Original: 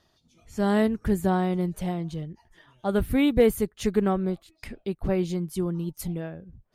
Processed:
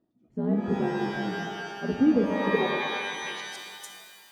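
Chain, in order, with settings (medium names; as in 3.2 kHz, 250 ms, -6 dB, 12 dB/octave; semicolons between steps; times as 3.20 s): granular stretch 0.64×, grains 28 ms; band-pass sweep 270 Hz -> 7 kHz, 2.44–3.63 s; pitch-shifted reverb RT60 2 s, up +12 st, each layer -2 dB, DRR 5 dB; trim +3.5 dB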